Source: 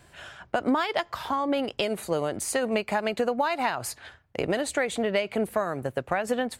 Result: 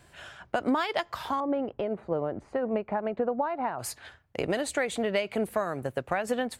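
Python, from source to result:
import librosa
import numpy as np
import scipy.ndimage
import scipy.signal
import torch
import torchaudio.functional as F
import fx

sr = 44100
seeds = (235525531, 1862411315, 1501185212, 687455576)

y = fx.lowpass(x, sr, hz=1100.0, slope=12, at=(1.4, 3.79))
y = F.gain(torch.from_numpy(y), -2.0).numpy()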